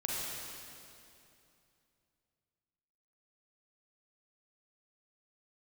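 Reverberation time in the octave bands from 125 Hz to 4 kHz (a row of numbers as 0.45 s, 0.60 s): 3.4 s, 3.0 s, 2.8 s, 2.6 s, 2.5 s, 2.4 s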